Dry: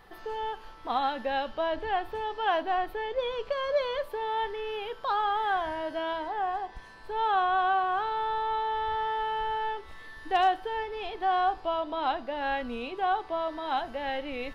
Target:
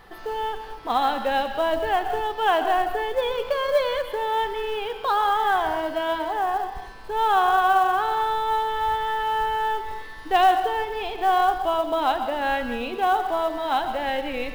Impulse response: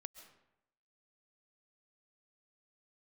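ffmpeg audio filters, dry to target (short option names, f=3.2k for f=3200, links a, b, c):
-filter_complex "[1:a]atrim=start_sample=2205,asetrate=48510,aresample=44100[a];[0:a][a]afir=irnorm=-1:irlink=0,acontrast=21,acrusher=bits=7:mode=log:mix=0:aa=0.000001,volume=8dB"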